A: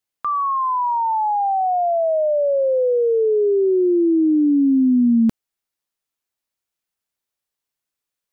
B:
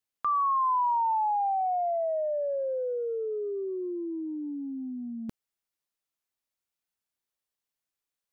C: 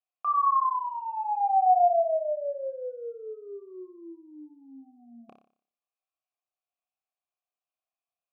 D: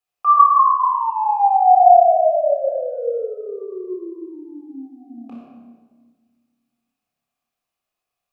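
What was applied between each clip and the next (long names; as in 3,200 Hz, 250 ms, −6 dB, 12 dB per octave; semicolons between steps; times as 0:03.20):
compressor whose output falls as the input rises −20 dBFS, ratio −0.5; level −8.5 dB
formant filter a; flutter between parallel walls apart 5.1 metres, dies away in 0.48 s; level +6 dB
rectangular room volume 1,400 cubic metres, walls mixed, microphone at 4 metres; level +4.5 dB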